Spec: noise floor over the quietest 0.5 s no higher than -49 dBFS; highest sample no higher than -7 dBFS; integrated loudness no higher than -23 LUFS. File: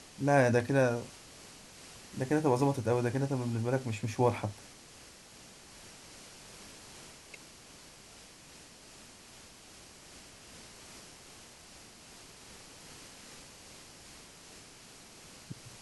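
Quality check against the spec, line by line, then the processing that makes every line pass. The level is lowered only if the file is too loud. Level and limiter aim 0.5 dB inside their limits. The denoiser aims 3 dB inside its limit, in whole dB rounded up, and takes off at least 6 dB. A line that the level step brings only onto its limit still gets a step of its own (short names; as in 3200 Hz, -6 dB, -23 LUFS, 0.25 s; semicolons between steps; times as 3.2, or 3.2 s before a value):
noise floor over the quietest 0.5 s -54 dBFS: OK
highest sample -14.0 dBFS: OK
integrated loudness -30.5 LUFS: OK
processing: none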